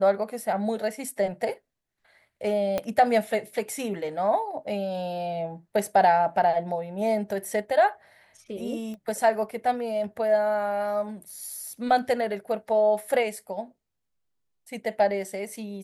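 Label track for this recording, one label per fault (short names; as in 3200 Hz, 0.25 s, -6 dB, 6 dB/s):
2.780000	2.780000	pop -14 dBFS
8.940000	8.940000	pop -29 dBFS
11.300000	11.300000	gap 3 ms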